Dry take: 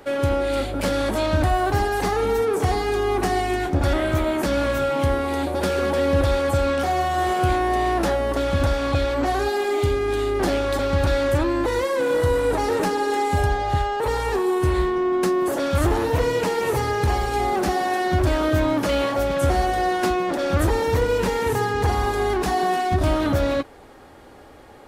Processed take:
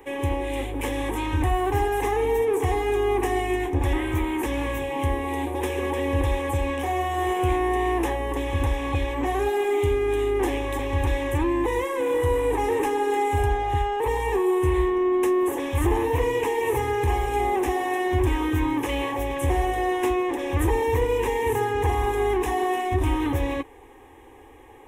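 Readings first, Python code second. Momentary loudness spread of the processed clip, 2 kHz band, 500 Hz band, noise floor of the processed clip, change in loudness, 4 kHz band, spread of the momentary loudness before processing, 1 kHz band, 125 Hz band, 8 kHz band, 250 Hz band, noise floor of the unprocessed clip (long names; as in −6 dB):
4 LU, −3.0 dB, −2.5 dB, −47 dBFS, −2.5 dB, −6.0 dB, 2 LU, −3.0 dB, −3.0 dB, −4.0 dB, −2.0 dB, −45 dBFS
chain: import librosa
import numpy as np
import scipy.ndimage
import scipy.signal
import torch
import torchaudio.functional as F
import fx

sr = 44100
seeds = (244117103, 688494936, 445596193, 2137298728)

y = fx.fixed_phaser(x, sr, hz=930.0, stages=8)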